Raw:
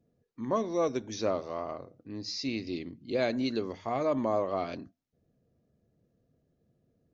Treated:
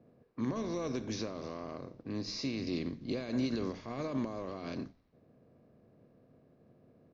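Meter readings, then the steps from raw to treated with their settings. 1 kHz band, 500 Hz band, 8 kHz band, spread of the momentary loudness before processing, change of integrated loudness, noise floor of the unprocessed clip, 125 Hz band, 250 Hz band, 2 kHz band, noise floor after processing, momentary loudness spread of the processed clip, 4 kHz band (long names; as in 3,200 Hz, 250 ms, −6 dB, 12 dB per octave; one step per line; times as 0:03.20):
−10.5 dB, −9.0 dB, can't be measured, 11 LU, −5.5 dB, −76 dBFS, +1.0 dB, −1.5 dB, −5.5 dB, −67 dBFS, 9 LU, −3.5 dB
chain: compressor on every frequency bin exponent 0.6
brickwall limiter −22.5 dBFS, peak gain reduction 10 dB
dynamic equaliser 710 Hz, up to −6 dB, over −46 dBFS, Q 1
low-pass that shuts in the quiet parts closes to 2,000 Hz, open at −30 dBFS
high-pass filter 99 Hz
low-shelf EQ 170 Hz +11 dB
echo with shifted repeats 88 ms, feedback 59%, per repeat −100 Hz, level −20 dB
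expander for the loud parts 1.5 to 1, over −52 dBFS
level −2 dB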